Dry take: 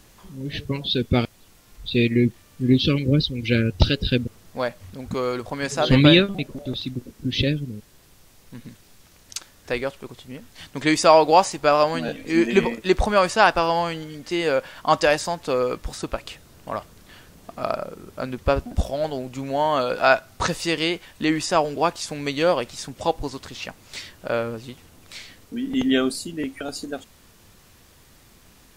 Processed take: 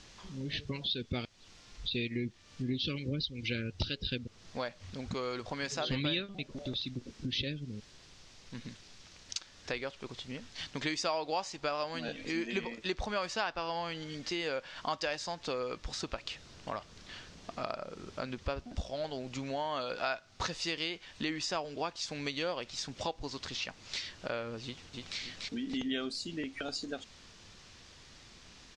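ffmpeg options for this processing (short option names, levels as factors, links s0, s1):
-filter_complex "[0:a]asettb=1/sr,asplit=3[s0][s1][s2];[s0]atrim=end=13.424[s3];[s1]atrim=start=13.42:end=13.95,asetpts=PTS-STARTPTS,afade=t=in:d=0.004:c=qsin,afade=t=out:st=0.526:d=0.004:c=qsin,highshelf=f=8600:g=-9.5[s4];[s2]atrim=start=13.946[s5];[s3][s4]acrossfade=d=0.004:c1=hsin:c2=qsin[s6];[s6][s5]acrossfade=d=0.004:c1=qsin:c2=hsin,asplit=2[s7][s8];[s8]afade=t=in:st=24.64:d=0.01,afade=t=out:st=25.19:d=0.01,aecho=0:1:290|580|870|1160|1450|1740:0.707946|0.318576|0.143359|0.0645116|0.0290302|0.0130636[s9];[s7][s9]amix=inputs=2:normalize=0,lowpass=f=5900:w=0.5412,lowpass=f=5900:w=1.3066,highshelf=f=2200:g=10,acompressor=threshold=0.0282:ratio=3,volume=0.562"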